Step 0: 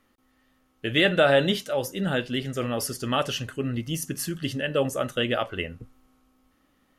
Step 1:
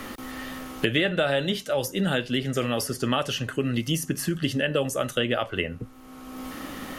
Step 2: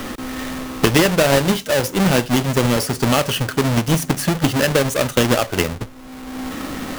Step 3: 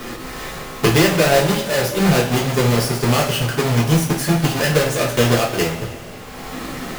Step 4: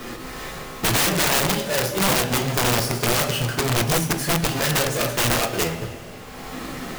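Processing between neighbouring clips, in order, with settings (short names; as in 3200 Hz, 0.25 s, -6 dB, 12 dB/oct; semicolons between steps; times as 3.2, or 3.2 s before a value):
three-band squash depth 100%
half-waves squared off; gain +4 dB
two-slope reverb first 0.3 s, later 2.8 s, from -18 dB, DRR -5.5 dB; gain -6 dB
wrapped overs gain 10.5 dB; gain -3.5 dB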